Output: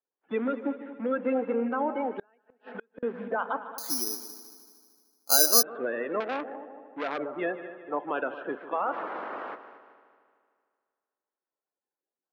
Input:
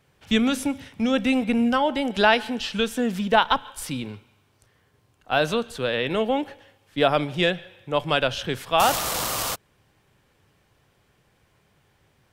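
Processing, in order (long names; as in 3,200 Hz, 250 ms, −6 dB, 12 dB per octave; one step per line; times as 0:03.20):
spectral magnitudes quantised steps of 30 dB
low-pass filter 1,600 Hz 24 dB per octave
noise gate −52 dBFS, range −28 dB
high-pass filter 280 Hz 24 dB per octave
brickwall limiter −17 dBFS, peak gain reduction 10 dB
echo machine with several playback heads 76 ms, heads second and third, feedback 52%, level −15 dB
0:02.18–0:03.03: gate with flip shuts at −22 dBFS, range −36 dB
0:03.78–0:05.63: bad sample-rate conversion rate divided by 8×, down filtered, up zero stuff
0:06.20–0:07.18: saturating transformer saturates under 1,500 Hz
level −2.5 dB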